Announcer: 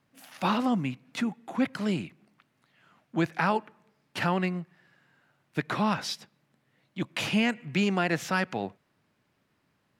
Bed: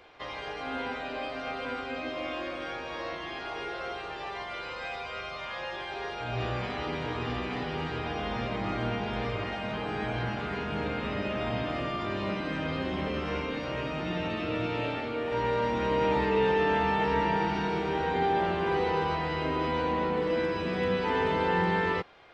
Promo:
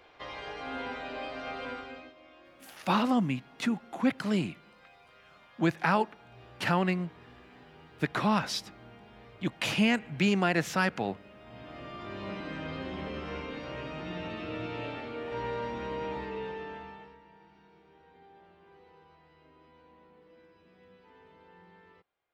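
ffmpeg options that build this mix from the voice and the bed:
-filter_complex "[0:a]adelay=2450,volume=0dB[a];[1:a]volume=12dB,afade=t=out:st=1.65:d=0.49:silence=0.125893,afade=t=in:st=11.44:d=0.94:silence=0.177828,afade=t=out:st=15.43:d=1.75:silence=0.0595662[b];[a][b]amix=inputs=2:normalize=0"

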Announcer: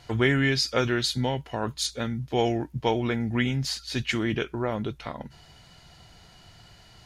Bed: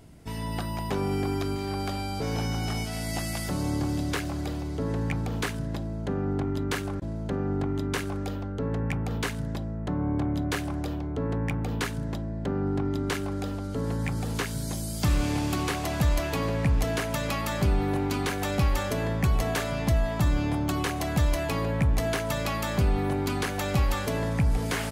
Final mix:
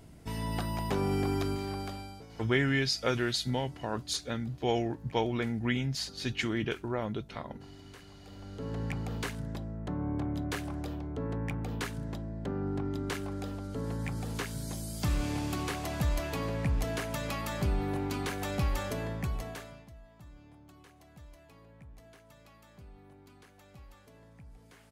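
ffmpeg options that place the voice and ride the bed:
-filter_complex "[0:a]adelay=2300,volume=-5dB[a];[1:a]volume=14.5dB,afade=t=out:st=1.42:d=0.85:silence=0.0944061,afade=t=in:st=8.23:d=0.6:silence=0.149624,afade=t=out:st=18.88:d=1:silence=0.0749894[b];[a][b]amix=inputs=2:normalize=0"

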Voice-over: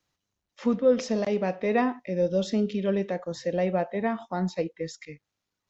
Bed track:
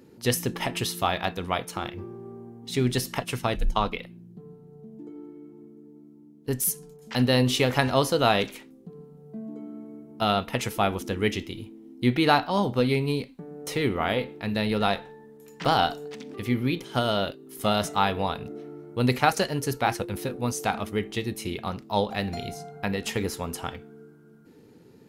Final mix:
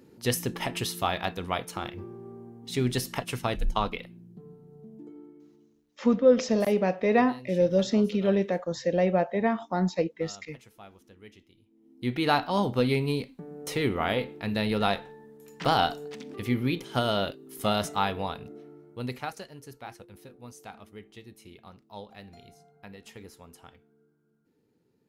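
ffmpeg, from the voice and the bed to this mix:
-filter_complex "[0:a]adelay=5400,volume=2dB[a];[1:a]volume=21dB,afade=t=out:st=4.91:d=0.95:silence=0.0749894,afade=t=in:st=11.67:d=0.85:silence=0.0668344,afade=t=out:st=17.54:d=1.91:silence=0.149624[b];[a][b]amix=inputs=2:normalize=0"

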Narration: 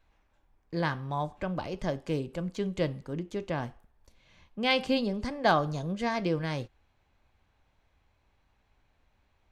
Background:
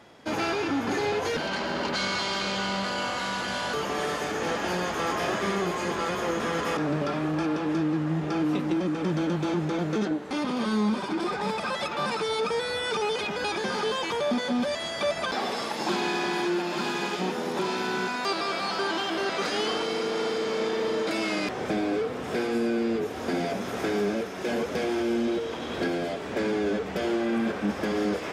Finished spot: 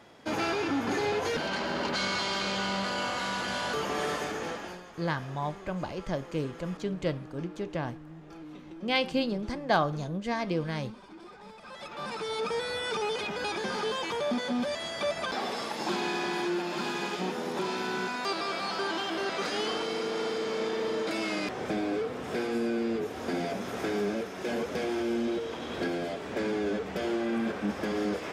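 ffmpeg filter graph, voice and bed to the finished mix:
-filter_complex "[0:a]adelay=4250,volume=-1dB[a];[1:a]volume=14dB,afade=t=out:st=4.14:d=0.69:silence=0.133352,afade=t=in:st=11.61:d=0.93:silence=0.158489[b];[a][b]amix=inputs=2:normalize=0"

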